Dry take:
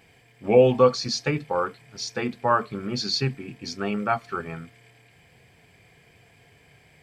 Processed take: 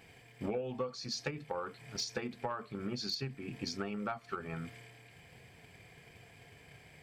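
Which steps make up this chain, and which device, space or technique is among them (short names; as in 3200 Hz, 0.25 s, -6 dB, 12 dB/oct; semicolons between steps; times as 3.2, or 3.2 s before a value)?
drum-bus smash (transient shaper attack +8 dB, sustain +4 dB; compressor 8:1, threshold -32 dBFS, peak gain reduction 24.5 dB; soft clip -22.5 dBFS, distortion -20 dB); gain -2 dB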